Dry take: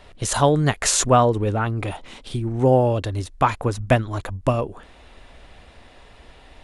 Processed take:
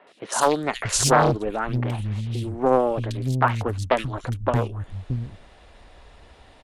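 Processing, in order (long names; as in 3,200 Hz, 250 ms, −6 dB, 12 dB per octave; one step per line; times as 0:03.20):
harmonic generator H 3 −25 dB, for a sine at −4 dBFS
three-band delay without the direct sound mids, highs, lows 70/630 ms, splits 220/2,500 Hz
highs frequency-modulated by the lows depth 0.64 ms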